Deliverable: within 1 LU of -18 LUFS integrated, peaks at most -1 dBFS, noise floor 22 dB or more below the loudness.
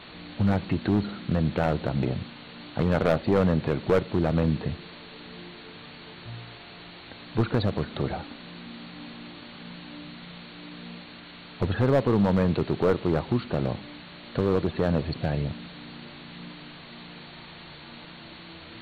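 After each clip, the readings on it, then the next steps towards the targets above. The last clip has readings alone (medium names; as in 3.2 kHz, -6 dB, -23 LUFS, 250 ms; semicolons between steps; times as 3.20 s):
clipped samples 0.9%; clipping level -15.0 dBFS; noise floor -45 dBFS; noise floor target -49 dBFS; loudness -26.5 LUFS; peak level -15.0 dBFS; loudness target -18.0 LUFS
-> clip repair -15 dBFS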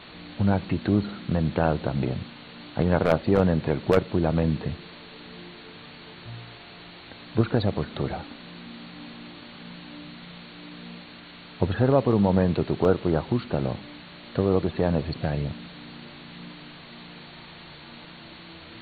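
clipped samples 0.0%; noise floor -45 dBFS; noise floor target -47 dBFS
-> noise reduction 6 dB, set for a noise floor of -45 dBFS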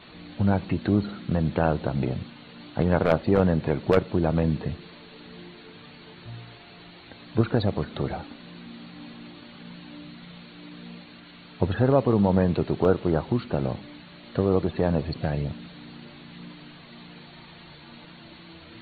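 noise floor -48 dBFS; loudness -25.0 LUFS; peak level -6.0 dBFS; loudness target -18.0 LUFS
-> trim +7 dB; peak limiter -1 dBFS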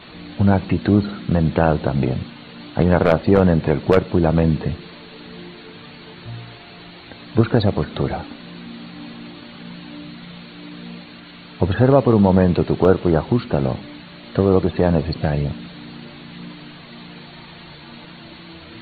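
loudness -18.5 LUFS; peak level -1.0 dBFS; noise floor -41 dBFS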